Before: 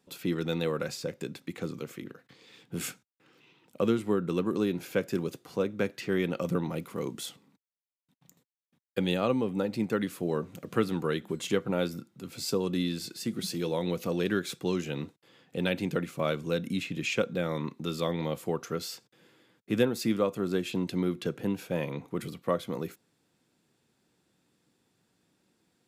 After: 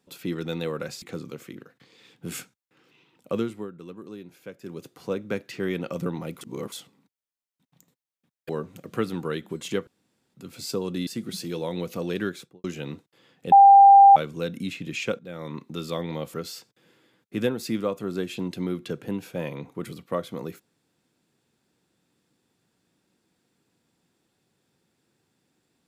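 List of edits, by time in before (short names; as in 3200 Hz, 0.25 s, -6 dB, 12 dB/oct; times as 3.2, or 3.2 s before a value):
1.02–1.51 cut
3.84–5.46 dip -12.5 dB, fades 0.36 s
6.9–7.21 reverse
8.98–10.28 cut
11.66–12.13 room tone
12.86–13.17 cut
14.36–14.74 studio fade out
15.62–16.26 bleep 794 Hz -8 dBFS
17.29–17.73 fade in, from -15 dB
18.44–18.7 cut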